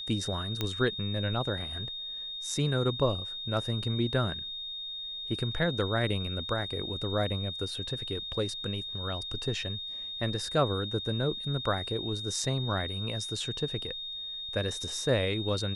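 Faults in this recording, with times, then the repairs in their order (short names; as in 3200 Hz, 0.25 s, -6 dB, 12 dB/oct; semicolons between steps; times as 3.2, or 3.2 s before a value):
tone 3700 Hz -36 dBFS
0.61 pop -15 dBFS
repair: de-click; notch 3700 Hz, Q 30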